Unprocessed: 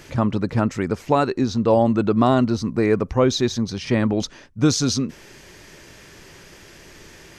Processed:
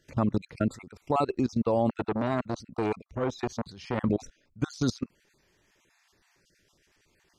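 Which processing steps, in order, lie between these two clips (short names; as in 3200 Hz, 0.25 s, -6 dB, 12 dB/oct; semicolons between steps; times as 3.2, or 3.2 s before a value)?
random spectral dropouts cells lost 31%; level quantiser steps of 22 dB; 1.89–4.04 core saturation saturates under 900 Hz; gain -2 dB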